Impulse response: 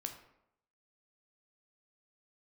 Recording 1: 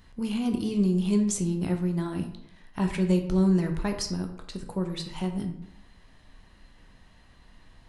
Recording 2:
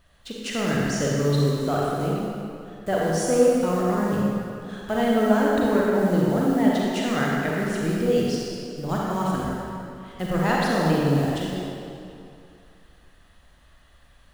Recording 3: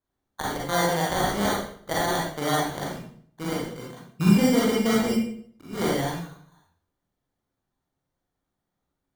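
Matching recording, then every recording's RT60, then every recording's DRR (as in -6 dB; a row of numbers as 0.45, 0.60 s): 1; 0.80, 2.6, 0.60 s; 4.5, -4.5, -5.0 dB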